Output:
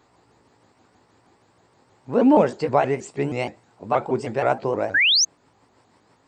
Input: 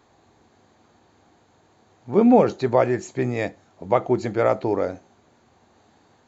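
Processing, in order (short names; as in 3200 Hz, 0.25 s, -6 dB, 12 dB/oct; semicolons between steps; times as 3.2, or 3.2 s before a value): repeated pitch sweeps +4 st, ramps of 0.158 s; painted sound rise, 4.94–5.25, 1500–6600 Hz -17 dBFS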